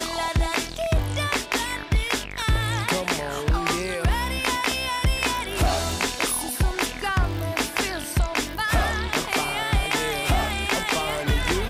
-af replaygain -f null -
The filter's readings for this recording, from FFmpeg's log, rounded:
track_gain = +5.7 dB
track_peak = 0.150